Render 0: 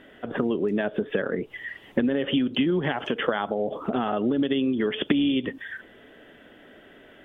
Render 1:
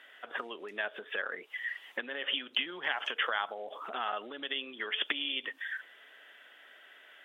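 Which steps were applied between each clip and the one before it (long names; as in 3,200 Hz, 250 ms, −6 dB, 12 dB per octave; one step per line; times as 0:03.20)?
high-pass filter 1,200 Hz 12 dB per octave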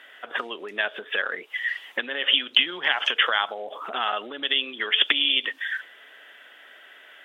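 dynamic equaliser 4,400 Hz, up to +8 dB, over −48 dBFS, Q 0.71
level +7 dB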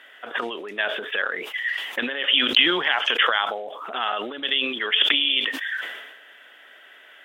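level that may fall only so fast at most 48 dB per second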